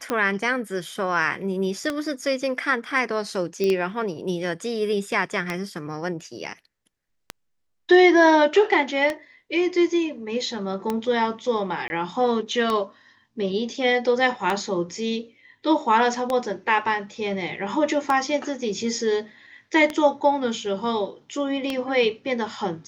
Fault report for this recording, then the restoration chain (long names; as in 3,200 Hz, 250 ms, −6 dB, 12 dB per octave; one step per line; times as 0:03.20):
scratch tick 33 1/3 rpm −11 dBFS
0:03.64: click −13 dBFS
0:11.88–0:11.90: drop-out 21 ms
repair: click removal
repair the gap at 0:11.88, 21 ms